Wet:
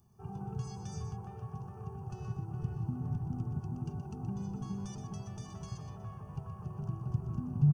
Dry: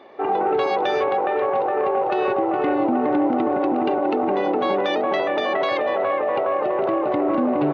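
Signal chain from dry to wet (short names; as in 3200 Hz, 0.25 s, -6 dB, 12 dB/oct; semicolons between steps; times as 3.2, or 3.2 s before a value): inverse Chebyshev band-stop 270–4100 Hz, stop band 40 dB; echo 0.123 s -8.5 dB; gain +12 dB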